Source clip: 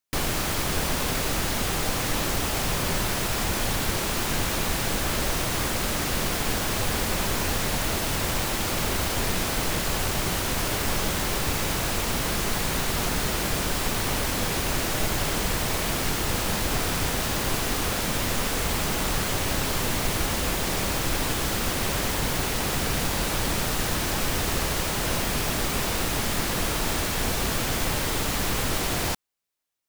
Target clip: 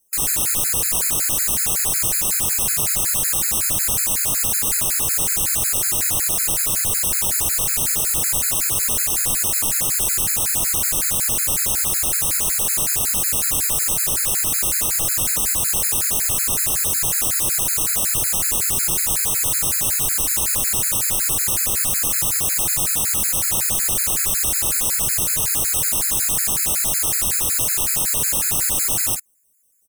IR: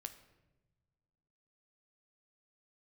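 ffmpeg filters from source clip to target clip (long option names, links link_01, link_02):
-filter_complex "[0:a]equalizer=frequency=125:width_type=o:width=1:gain=6,equalizer=frequency=250:width_type=o:width=1:gain=-4,equalizer=frequency=2000:width_type=o:width=1:gain=6,equalizer=frequency=8000:width_type=o:width=1:gain=8,asplit=2[link_01][link_02];[link_02]acrusher=samples=33:mix=1:aa=0.000001:lfo=1:lforange=19.8:lforate=0.92,volume=-3dB[link_03];[link_01][link_03]amix=inputs=2:normalize=0,aexciter=amount=9.7:drive=5.7:freq=6200,asoftclip=type=tanh:threshold=-16dB,asplit=2[link_04][link_05];[link_05]adelay=48,volume=-6.5dB[link_06];[link_04][link_06]amix=inputs=2:normalize=0,afftfilt=real='re*gt(sin(2*PI*5.4*pts/sr)*(1-2*mod(floor(b*sr/1024/1300),2)),0)':imag='im*gt(sin(2*PI*5.4*pts/sr)*(1-2*mod(floor(b*sr/1024/1300),2)),0)':win_size=1024:overlap=0.75"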